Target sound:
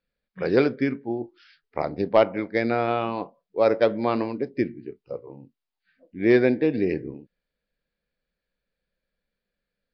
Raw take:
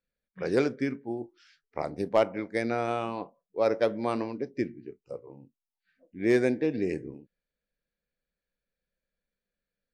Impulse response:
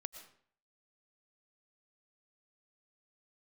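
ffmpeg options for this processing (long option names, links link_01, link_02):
-af "aresample=11025,aresample=44100,volume=5.5dB"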